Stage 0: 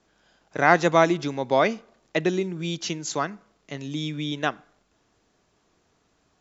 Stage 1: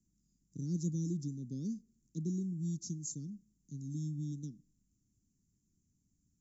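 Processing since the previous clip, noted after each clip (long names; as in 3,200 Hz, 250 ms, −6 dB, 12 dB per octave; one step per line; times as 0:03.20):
inverse Chebyshev band-stop filter 640–2,700 Hz, stop band 60 dB
level −4.5 dB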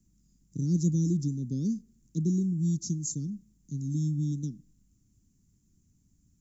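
low-shelf EQ 120 Hz +6 dB
level +7.5 dB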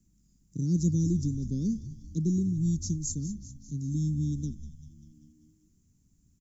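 echo with shifted repeats 196 ms, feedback 60%, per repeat −76 Hz, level −13.5 dB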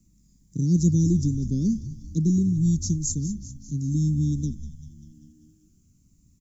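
phaser whose notches keep moving one way falling 0.48 Hz
level +6 dB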